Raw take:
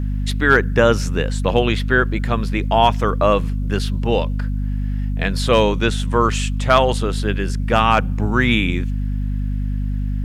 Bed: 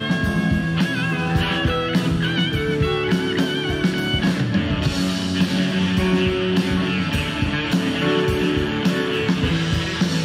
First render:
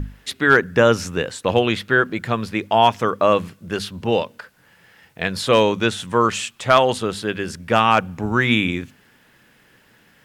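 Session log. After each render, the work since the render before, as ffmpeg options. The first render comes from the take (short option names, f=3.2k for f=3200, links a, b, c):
-af "bandreject=f=50:t=h:w=6,bandreject=f=100:t=h:w=6,bandreject=f=150:t=h:w=6,bandreject=f=200:t=h:w=6,bandreject=f=250:t=h:w=6"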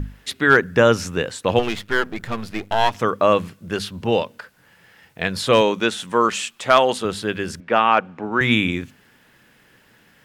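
-filter_complex "[0:a]asettb=1/sr,asplit=3[a][b][c];[a]atrim=end=1.594[d];[b]atrim=start=1.59:end=2.95,asetpts=PTS-STARTPTS,afade=t=in:d=0.004:c=qsin,afade=t=out:st=1.356:d=0.004:c=qsin,aeval=exprs='if(lt(val(0),0),0.251*val(0),val(0))':c=same[e];[c]atrim=start=2.946[f];[d][e]acrossfade=d=0.004:c1=hsin:c2=qsin[g];[g][f]acrossfade=d=0.004:c1=qsin:c2=hsin,asettb=1/sr,asplit=3[h][i][j];[h]atrim=end=5.614[k];[i]atrim=start=5.61:end=7.05,asetpts=PTS-STARTPTS,afade=t=in:d=0.004:c=qsin,afade=t=out:st=1.436:d=0.004:c=qsin,equalizer=f=100:t=o:w=0.83:g=-15[l];[j]atrim=start=7.046[m];[k][l]acrossfade=d=0.004:c1=hsin:c2=qsin[n];[n][m]acrossfade=d=0.004:c1=qsin:c2=hsin,asettb=1/sr,asplit=3[o][p][q];[o]atrim=end=7.604[r];[p]atrim=start=7.6:end=8.41,asetpts=PTS-STARTPTS,afade=t=in:d=0.004:c=qsin,afade=t=out:st=0.806:d=0.004:c=qsin,highpass=270,lowpass=2.8k[s];[q]atrim=start=8.406[t];[r][s]acrossfade=d=0.004:c1=hsin:c2=qsin[u];[u][t]acrossfade=d=0.004:c1=qsin:c2=hsin"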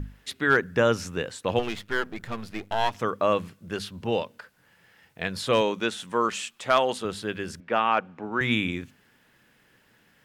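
-af "volume=-7dB"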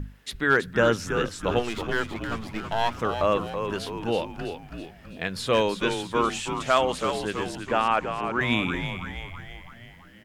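-filter_complex "[0:a]asplit=8[a][b][c][d][e][f][g][h];[b]adelay=327,afreqshift=-88,volume=-7.5dB[i];[c]adelay=654,afreqshift=-176,volume=-12.7dB[j];[d]adelay=981,afreqshift=-264,volume=-17.9dB[k];[e]adelay=1308,afreqshift=-352,volume=-23.1dB[l];[f]adelay=1635,afreqshift=-440,volume=-28.3dB[m];[g]adelay=1962,afreqshift=-528,volume=-33.5dB[n];[h]adelay=2289,afreqshift=-616,volume=-38.7dB[o];[a][i][j][k][l][m][n][o]amix=inputs=8:normalize=0"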